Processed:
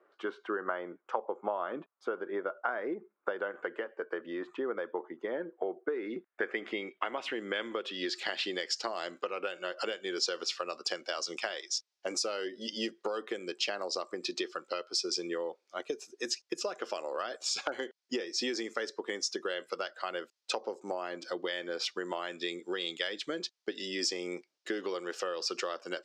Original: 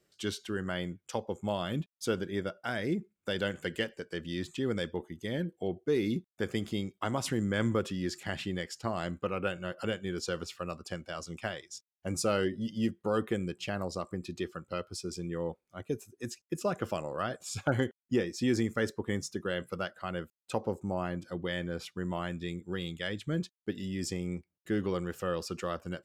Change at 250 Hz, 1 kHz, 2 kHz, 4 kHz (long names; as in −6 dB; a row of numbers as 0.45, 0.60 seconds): −7.5, +1.0, +1.0, +6.0 decibels